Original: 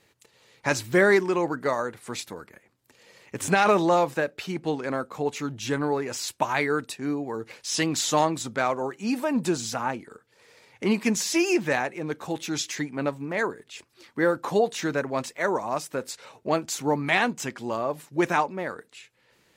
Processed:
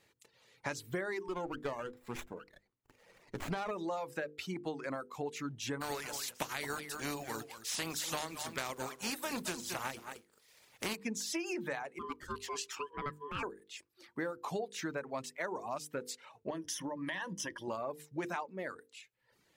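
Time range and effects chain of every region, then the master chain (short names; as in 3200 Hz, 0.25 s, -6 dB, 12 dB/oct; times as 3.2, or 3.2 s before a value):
1.28–3.71 HPF 63 Hz + running maximum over 9 samples
5.8–10.95 spectral contrast lowered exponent 0.47 + echo 0.218 s -9 dB
11.99–13.43 steep high-pass 190 Hz 48 dB/oct + ring modulator 720 Hz
16.5–17.68 ripple EQ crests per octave 1.2, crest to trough 15 dB + compressor, threshold -27 dBFS
whole clip: reverb removal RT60 0.85 s; notches 50/100/150/200/250/300/350/400/450/500 Hz; compressor 10:1, threshold -28 dBFS; gain -6 dB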